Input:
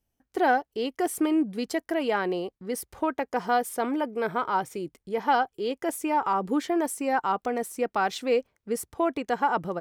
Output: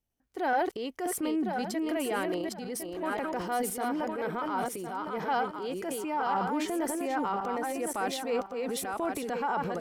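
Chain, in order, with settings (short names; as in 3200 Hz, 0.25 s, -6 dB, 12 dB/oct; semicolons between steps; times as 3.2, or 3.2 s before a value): regenerating reverse delay 0.529 s, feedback 41%, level -4 dB; transient shaper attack -4 dB, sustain +7 dB; gain -6 dB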